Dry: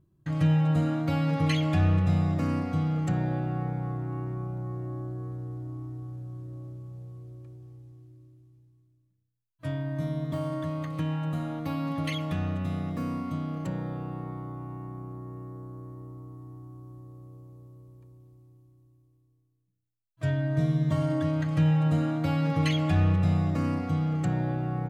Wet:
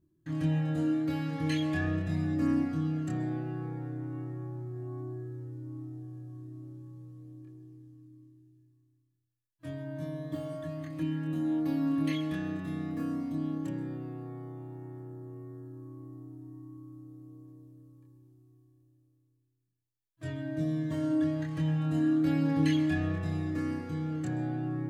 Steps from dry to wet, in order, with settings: high shelf 3500 Hz +7 dB; chorus voices 2, 0.2 Hz, delay 25 ms, depth 1.2 ms; small resonant body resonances 310/1700 Hz, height 14 dB, ringing for 55 ms; on a send: reverb RT60 0.40 s, pre-delay 0.121 s, DRR 15 dB; on the sum: gain -6.5 dB

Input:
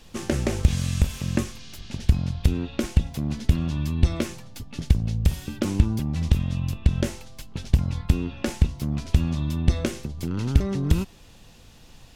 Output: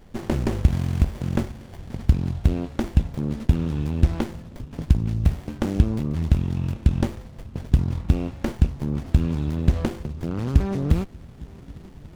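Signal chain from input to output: swung echo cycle 1.143 s, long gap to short 3:1, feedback 64%, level -24 dB; running maximum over 33 samples; gain +2 dB

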